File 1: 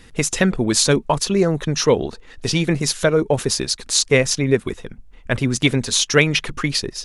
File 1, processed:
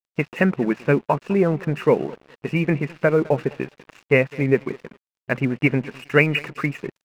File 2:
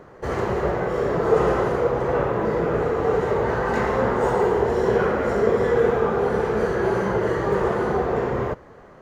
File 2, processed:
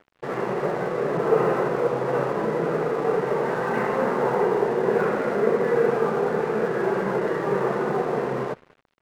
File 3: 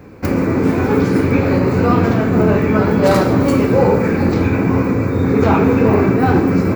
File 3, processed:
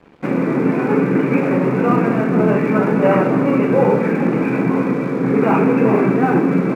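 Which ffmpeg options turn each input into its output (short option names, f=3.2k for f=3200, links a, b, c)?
-filter_complex "[0:a]asplit=2[a][b];[b]aecho=0:1:206|412|618:0.1|0.038|0.0144[c];[a][c]amix=inputs=2:normalize=0,afftfilt=real='re*between(b*sr/4096,120,2900)':imag='im*between(b*sr/4096,120,2900)':win_size=4096:overlap=0.75,aeval=exprs='sgn(val(0))*max(abs(val(0))-0.01,0)':c=same,volume=-1dB"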